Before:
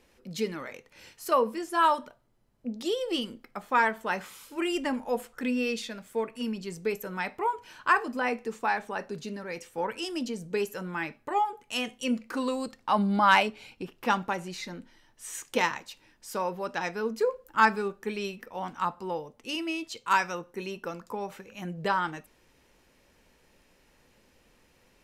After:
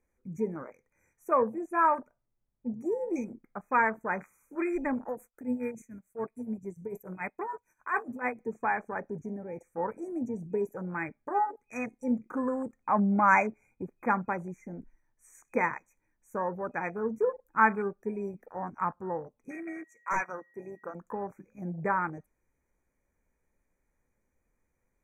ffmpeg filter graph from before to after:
-filter_complex "[0:a]asettb=1/sr,asplit=3[a][b][c];[a]atrim=end=5.084[d];[b]atrim=start=5.08:end=8.4,asetpts=PTS-STARTPTS,afade=t=in:d=0.004:c=qsin,afade=t=out:st=3.316:d=0.004:c=qsin,agate=range=-33dB:threshold=-48dB:ratio=3:release=100:detection=peak,highshelf=f=5.7k:g=11,tremolo=f=6.9:d=0.76[e];[c]atrim=start=8.396[f];[d][e]acrossfade=d=0.004:c1=hsin:c2=qsin[g];[g][f]acrossfade=d=0.004:c1=qsin:c2=hsin,asettb=1/sr,asplit=3[h][i][j];[h]atrim=end=19.514[k];[i]atrim=start=19.51:end=20.95,asetpts=PTS-STARTPTS,afade=t=in:d=0.004:c=qsin,afade=t=out:st=1.436:d=0.004:c=qsin,highpass=f=500:p=1,aeval=exprs='0.0944*(abs(mod(val(0)/0.0944+3,4)-2)-1)':c=same,aeval=exprs='val(0)+0.00562*sin(2*PI*1900*n/s)':c=same[l];[j]atrim=start=20.946[m];[k][l]acrossfade=d=0.004:c1=hsin:c2=qsin[n];[n][m]acrossfade=d=0.004:c1=qsin:c2=hsin,afwtdn=0.0158,afftfilt=real='re*(1-between(b*sr/4096,2500,5800))':imag='im*(1-between(b*sr/4096,2500,5800))':win_size=4096:overlap=0.75,lowshelf=f=99:g=10,volume=-1.5dB"

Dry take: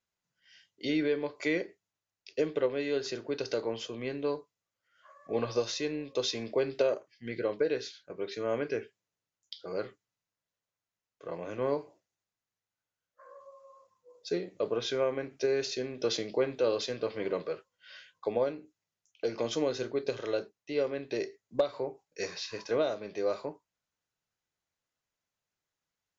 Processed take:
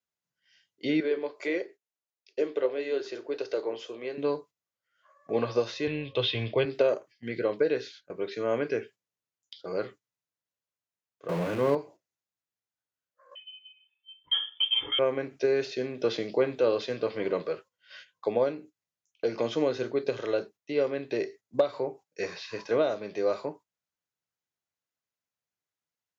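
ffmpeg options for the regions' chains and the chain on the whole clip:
-filter_complex "[0:a]asettb=1/sr,asplit=3[a][b][c];[a]atrim=end=1.004[d];[b]atrim=start=1:end=4.18,asetpts=PTS-STARTPTS,afade=t=in:d=0.004:c=qsin,afade=t=out:st=3.176:d=0.004:c=qsin,lowshelf=f=260:t=q:w=1.5:g=-10.5,flanger=delay=1.5:depth=8:regen=-69:speed=1.6:shape=sinusoidal[e];[c]atrim=start=4.176[f];[d][e]acrossfade=d=0.004:c1=hsin:c2=qsin[g];[g][f]acrossfade=d=0.004:c1=qsin:c2=hsin,asettb=1/sr,asplit=3[h][i][j];[h]atrim=end=5.874[k];[i]atrim=start=5.87:end=6.65,asetpts=PTS-STARTPTS,afade=t=in:d=0.004:c=qsin,afade=t=out:st=0.776:d=0.004:c=qsin,lowpass=f=3.2k:t=q:w=4.7,lowshelf=f=150:t=q:w=1.5:g=12.5[l];[j]atrim=start=6.646[m];[k][l]acrossfade=d=0.004:c1=hsin:c2=qsin[n];[n][m]acrossfade=d=0.004:c1=qsin:c2=hsin,asettb=1/sr,asplit=3[o][p][q];[o]atrim=end=11.294[r];[p]atrim=start=11.29:end=11.75,asetpts=PTS-STARTPTS,afade=t=in:d=0.004:c=qsin,afade=t=out:st=0.456:d=0.004:c=qsin,aeval=exprs='val(0)+0.5*0.0188*sgn(val(0))':c=same,equalizer=f=170:t=o:w=0.42:g=8.5[s];[q]atrim=start=11.746[t];[r][s]acrossfade=d=0.004:c1=hsin:c2=qsin[u];[u][t]acrossfade=d=0.004:c1=qsin:c2=hsin,asettb=1/sr,asplit=3[v][w][x];[v]atrim=end=13.354[y];[w]atrim=start=13.35:end=14.99,asetpts=PTS-STARTPTS,afade=t=in:d=0.004:c=qsin,afade=t=out:st=1.636:d=0.004:c=qsin,highshelf=f=2.1k:g=-4.5,aecho=1:1:2.2:0.94,atrim=end_sample=72324,lowpass=f=3.1k:t=q:w=0.5098,lowpass=f=3.1k:t=q:w=0.6013,lowpass=f=3.1k:t=q:w=0.9,lowpass=f=3.1k:t=q:w=2.563,afreqshift=-3600[z];[x]atrim=start=14.986[aa];[y][z]acrossfade=d=0.004:c1=hsin:c2=qsin[ab];[ab][aa]acrossfade=d=0.004:c1=qsin:c2=hsin,agate=range=-9dB:threshold=-51dB:ratio=16:detection=peak,highpass=80,acrossover=split=3500[ac][ad];[ad]acompressor=threshold=-54dB:ratio=4:attack=1:release=60[ae];[ac][ae]amix=inputs=2:normalize=0,volume=3.5dB"

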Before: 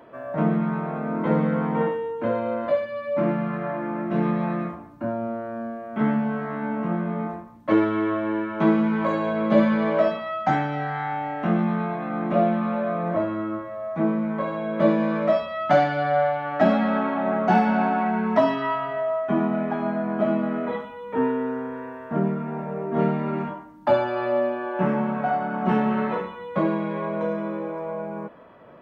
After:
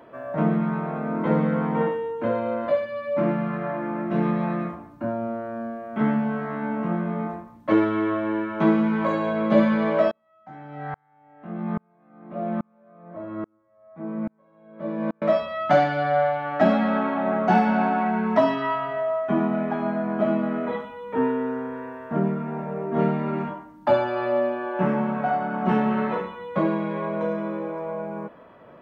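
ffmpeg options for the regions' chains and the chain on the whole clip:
-filter_complex "[0:a]asettb=1/sr,asplit=3[a][b][c];[a]atrim=end=10.114[d];[b]atrim=start=10.11:end=15.22,asetpts=PTS-STARTPTS,afade=t=in:d=0.004:c=qsin,afade=t=out:st=5.106:d=0.004:c=qsin,highshelf=f=2.7k:g=-12,aeval=exprs='val(0)*pow(10,-40*if(lt(mod(-1.2*n/s,1),2*abs(-1.2)/1000),1-mod(-1.2*n/s,1)/(2*abs(-1.2)/1000),(mod(-1.2*n/s,1)-2*abs(-1.2)/1000)/(1-2*abs(-1.2)/1000))/20)':c=same[e];[c]atrim=start=15.216[f];[d][e]acrossfade=d=0.004:c1=hsin:c2=qsin[g];[g][f]acrossfade=d=0.004:c1=qsin:c2=hsin"

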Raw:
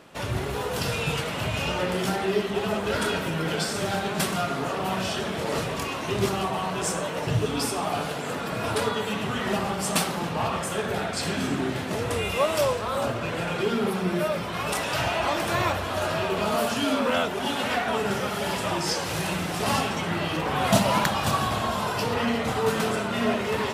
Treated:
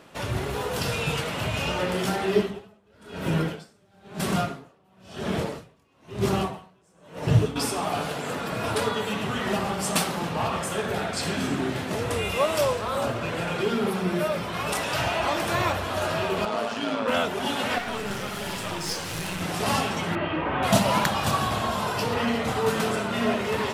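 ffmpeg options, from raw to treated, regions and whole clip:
-filter_complex "[0:a]asettb=1/sr,asplit=3[a][b][c];[a]atrim=end=2.354[d];[b]atrim=start=2.35:end=7.56,asetpts=PTS-STARTPTS,afade=t=in:d=0.004:c=qsin,afade=t=out:st=5.206:d=0.004:c=qsin,lowshelf=f=440:g=7,aeval=exprs='val(0)*pow(10,-38*(0.5-0.5*cos(2*PI*1*n/s))/20)':c=same[e];[c]atrim=start=7.556[f];[d][e]acrossfade=d=0.004:c1=hsin:c2=qsin[g];[g][f]acrossfade=d=0.004:c1=qsin:c2=hsin,asettb=1/sr,asplit=3[h][i][j];[h]atrim=end=16.454[k];[i]atrim=start=16.45:end=17.08,asetpts=PTS-STARTPTS,afade=t=in:d=0.004:c=qsin,afade=t=out:st=0.626:d=0.004:c=qsin,highpass=220,adynamicsmooth=sensitivity=2:basefreq=4.7k,tremolo=f=110:d=0.519[l];[j]atrim=start=17.076[m];[k][l]acrossfade=d=0.004:c1=hsin:c2=qsin[n];[n][m]acrossfade=d=0.004:c1=qsin:c2=hsin,asettb=1/sr,asplit=3[o][p][q];[o]atrim=end=17.784[r];[p]atrim=start=17.78:end=19.41,asetpts=PTS-STARTPTS,afade=t=in:d=0.004:c=qsin,afade=t=out:st=1.626:d=0.004:c=qsin,equalizer=f=670:t=o:w=2.1:g=-4.5,aeval=exprs='clip(val(0),-1,0.0224)':c=same[s];[q]atrim=start=19.406[t];[r][s]acrossfade=d=0.004:c1=hsin:c2=qsin[u];[u][t]acrossfade=d=0.004:c1=qsin:c2=hsin,asettb=1/sr,asplit=3[v][w][x];[v]atrim=end=20.154[y];[w]atrim=start=20.15:end=20.63,asetpts=PTS-STARTPTS,afade=t=in:d=0.004:c=qsin,afade=t=out:st=0.476:d=0.004:c=qsin,lowpass=f=2.8k:w=0.5412,lowpass=f=2.8k:w=1.3066,aecho=1:1:3.2:0.37,atrim=end_sample=21168[z];[x]atrim=start=20.626[aa];[y][z]acrossfade=d=0.004:c1=hsin:c2=qsin[ab];[ab][aa]acrossfade=d=0.004:c1=qsin:c2=hsin"

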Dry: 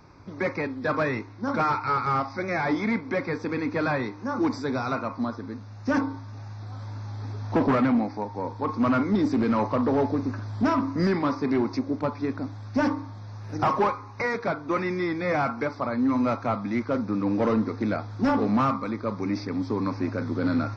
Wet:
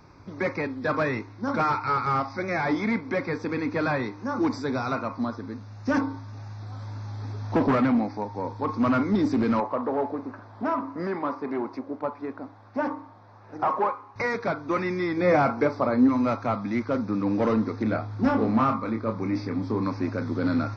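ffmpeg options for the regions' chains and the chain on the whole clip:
-filter_complex "[0:a]asettb=1/sr,asplit=3[a][b][c];[a]atrim=end=9.604[d];[b]atrim=start=9.6:end=14.16,asetpts=PTS-STARTPTS,afade=t=in:d=0.004:c=qsin,afade=t=out:st=4.556:d=0.004:c=qsin,aeval=exprs='sgn(val(0))*max(abs(val(0))-0.00119,0)':c=same,bandpass=f=780:t=q:w=0.78[e];[c]atrim=start=14.156[f];[d][e]acrossfade=d=0.004:c1=hsin:c2=qsin[g];[g][f]acrossfade=d=0.004:c1=qsin:c2=hsin,asettb=1/sr,asplit=3[h][i][j];[h]atrim=end=15.174[k];[i]atrim=start=15.17:end=16.09,asetpts=PTS-STARTPTS,afade=t=in:d=0.004:c=qsin,afade=t=out:st=0.916:d=0.004:c=qsin,equalizer=f=410:t=o:w=2.2:g=6.5,asplit=2[l][m];[m]adelay=28,volume=-12dB[n];[l][n]amix=inputs=2:normalize=0,atrim=end_sample=40572[o];[j]atrim=start=16.086[p];[k][o]acrossfade=d=0.004:c1=hsin:c2=qsin[q];[q][p]acrossfade=d=0.004:c1=qsin:c2=hsin,asettb=1/sr,asplit=3[r][s][t];[r]atrim=end=17.834[u];[s]atrim=start=17.83:end=19.83,asetpts=PTS-STARTPTS,afade=t=in:d=0.004:c=qsin,afade=t=out:st=1.996:d=0.004:c=qsin,highshelf=f=4.4k:g=-9.5,asplit=2[v][w];[w]adelay=27,volume=-5.5dB[x];[v][x]amix=inputs=2:normalize=0,atrim=end_sample=88200[y];[t]atrim=start=19.826[z];[u][y]acrossfade=d=0.004:c1=hsin:c2=qsin[aa];[aa][z]acrossfade=d=0.004:c1=qsin:c2=hsin"

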